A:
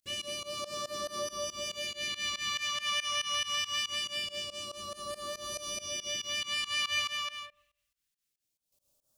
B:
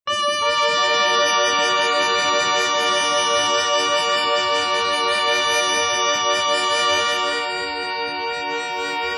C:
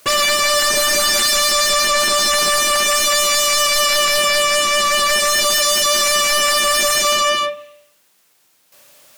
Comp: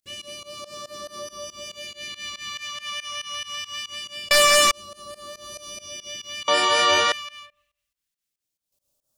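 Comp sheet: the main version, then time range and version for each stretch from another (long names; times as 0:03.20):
A
0:04.31–0:04.71: punch in from C
0:06.48–0:07.12: punch in from B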